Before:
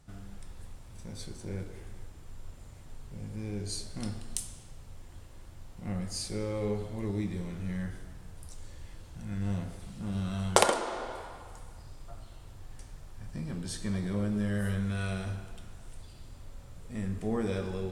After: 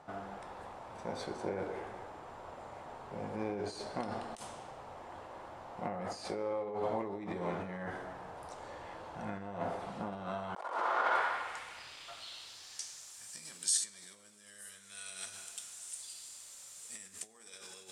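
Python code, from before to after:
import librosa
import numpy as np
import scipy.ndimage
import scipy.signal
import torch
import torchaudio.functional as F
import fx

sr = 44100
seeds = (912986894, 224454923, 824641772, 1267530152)

y = fx.low_shelf(x, sr, hz=180.0, db=-6.5)
y = fx.over_compress(y, sr, threshold_db=-41.0, ratio=-1.0)
y = fx.filter_sweep_bandpass(y, sr, from_hz=800.0, to_hz=7900.0, start_s=10.38, end_s=13.22, q=1.8)
y = F.gain(torch.from_numpy(y), 14.5).numpy()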